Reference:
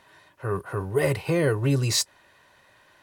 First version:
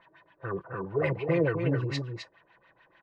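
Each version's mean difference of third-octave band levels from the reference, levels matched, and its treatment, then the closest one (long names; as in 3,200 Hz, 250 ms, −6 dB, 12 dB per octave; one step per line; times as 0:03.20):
7.0 dB: low-pass filter 8,700 Hz 12 dB per octave
comb filter 6 ms, depth 52%
auto-filter low-pass sine 6.8 Hz 390–3,000 Hz
on a send: single-tap delay 259 ms −6.5 dB
on the sum: level −7.5 dB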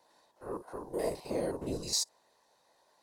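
5.0 dB: spectrum averaged block by block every 50 ms
meter weighting curve A
random phases in short frames
flat-topped bell 2,000 Hz −15 dB
level −4 dB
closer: second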